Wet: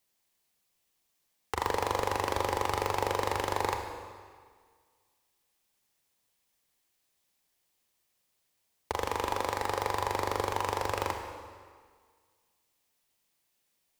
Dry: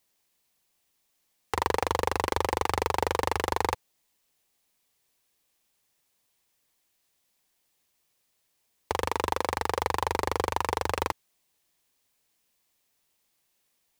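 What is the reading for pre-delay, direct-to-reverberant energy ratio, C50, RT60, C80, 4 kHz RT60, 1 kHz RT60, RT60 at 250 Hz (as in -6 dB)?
27 ms, 4.5 dB, 5.5 dB, 1.8 s, 7.0 dB, 1.5 s, 1.8 s, 1.8 s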